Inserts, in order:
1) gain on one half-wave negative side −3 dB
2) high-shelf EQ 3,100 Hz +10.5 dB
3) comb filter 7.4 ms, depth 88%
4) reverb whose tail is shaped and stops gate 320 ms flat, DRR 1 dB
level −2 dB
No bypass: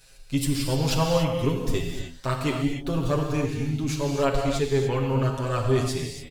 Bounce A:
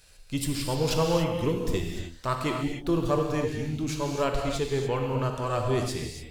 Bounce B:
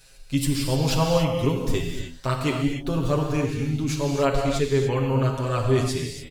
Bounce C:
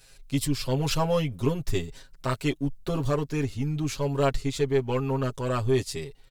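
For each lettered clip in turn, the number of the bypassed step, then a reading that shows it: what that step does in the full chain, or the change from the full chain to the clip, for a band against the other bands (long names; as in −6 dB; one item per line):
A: 3, 125 Hz band −2.5 dB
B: 1, distortion level −15 dB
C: 4, change in integrated loudness −2.0 LU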